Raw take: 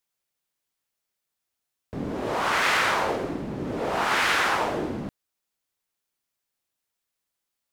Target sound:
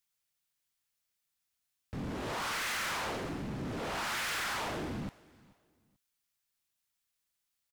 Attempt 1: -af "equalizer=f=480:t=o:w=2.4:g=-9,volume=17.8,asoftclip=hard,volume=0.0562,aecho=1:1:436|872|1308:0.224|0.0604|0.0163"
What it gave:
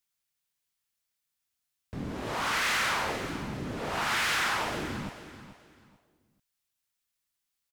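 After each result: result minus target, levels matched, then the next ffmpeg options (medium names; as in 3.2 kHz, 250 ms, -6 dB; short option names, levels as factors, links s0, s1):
echo-to-direct +11 dB; overload inside the chain: distortion -7 dB
-af "equalizer=f=480:t=o:w=2.4:g=-9,volume=17.8,asoftclip=hard,volume=0.0562,aecho=1:1:436|872:0.0631|0.017"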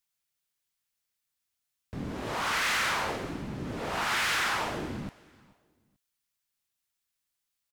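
overload inside the chain: distortion -7 dB
-af "equalizer=f=480:t=o:w=2.4:g=-9,volume=50.1,asoftclip=hard,volume=0.02,aecho=1:1:436|872:0.0631|0.017"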